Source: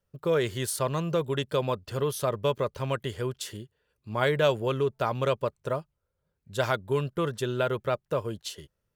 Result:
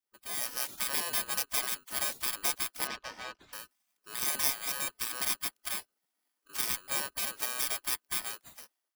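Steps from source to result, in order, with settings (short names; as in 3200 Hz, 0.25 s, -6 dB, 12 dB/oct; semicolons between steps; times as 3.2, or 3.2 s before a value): FFT order left unsorted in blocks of 32 samples; AGC gain up to 12 dB; spectral gate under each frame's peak -20 dB weak; 2.87–3.53 air absorption 160 m; gain -5 dB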